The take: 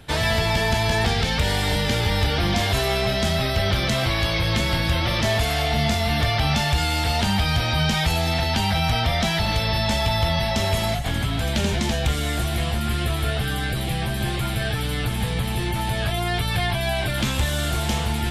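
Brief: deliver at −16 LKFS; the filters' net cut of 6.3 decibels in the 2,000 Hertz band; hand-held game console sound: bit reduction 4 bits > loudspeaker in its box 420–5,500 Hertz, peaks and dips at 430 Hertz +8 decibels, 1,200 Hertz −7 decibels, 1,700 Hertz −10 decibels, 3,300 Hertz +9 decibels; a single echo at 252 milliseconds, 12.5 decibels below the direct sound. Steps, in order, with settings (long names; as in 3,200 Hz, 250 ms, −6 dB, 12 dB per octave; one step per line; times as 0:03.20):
parametric band 2,000 Hz −4.5 dB
single-tap delay 252 ms −12.5 dB
bit reduction 4 bits
loudspeaker in its box 420–5,500 Hz, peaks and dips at 430 Hz +8 dB, 1,200 Hz −7 dB, 1,700 Hz −10 dB, 3,300 Hz +9 dB
level +5.5 dB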